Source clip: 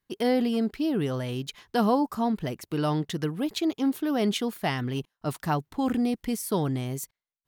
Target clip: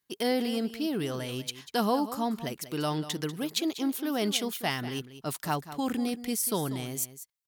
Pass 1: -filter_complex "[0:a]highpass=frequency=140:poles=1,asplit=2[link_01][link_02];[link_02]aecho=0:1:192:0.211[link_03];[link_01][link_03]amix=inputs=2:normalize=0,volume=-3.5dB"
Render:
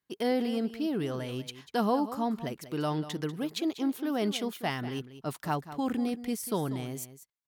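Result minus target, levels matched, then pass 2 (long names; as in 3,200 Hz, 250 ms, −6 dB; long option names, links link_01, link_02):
8,000 Hz band −7.5 dB
-filter_complex "[0:a]highpass=frequency=140:poles=1,highshelf=frequency=3000:gain=10,asplit=2[link_01][link_02];[link_02]aecho=0:1:192:0.211[link_03];[link_01][link_03]amix=inputs=2:normalize=0,volume=-3.5dB"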